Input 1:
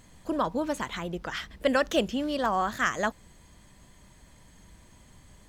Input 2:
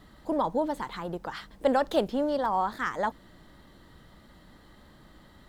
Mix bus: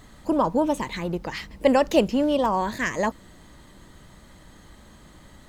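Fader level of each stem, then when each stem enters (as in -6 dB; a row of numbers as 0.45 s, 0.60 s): +1.0 dB, +3.0 dB; 0.00 s, 0.00 s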